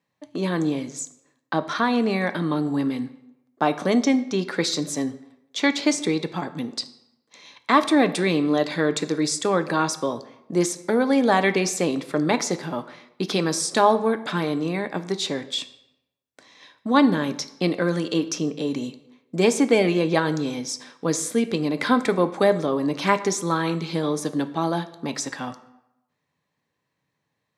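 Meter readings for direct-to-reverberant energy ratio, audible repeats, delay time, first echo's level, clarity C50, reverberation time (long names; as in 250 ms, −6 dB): 11.0 dB, no echo audible, no echo audible, no echo audible, 14.5 dB, 0.90 s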